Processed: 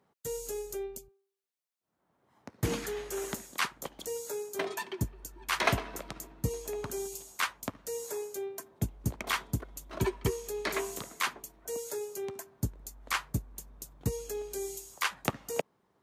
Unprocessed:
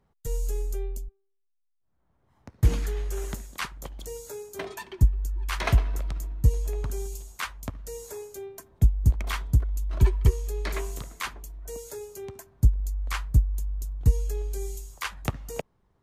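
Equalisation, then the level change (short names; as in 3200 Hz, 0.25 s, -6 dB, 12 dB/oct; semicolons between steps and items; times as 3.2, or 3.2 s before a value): HPF 210 Hz 12 dB/oct; +2.0 dB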